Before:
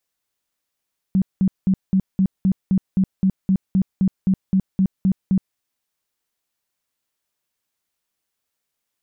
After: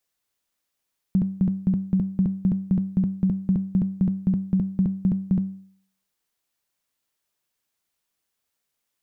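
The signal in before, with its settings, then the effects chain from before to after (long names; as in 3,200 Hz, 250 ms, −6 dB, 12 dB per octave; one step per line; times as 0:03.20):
tone bursts 190 Hz, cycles 13, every 0.26 s, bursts 17, −13 dBFS
hum removal 95.93 Hz, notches 28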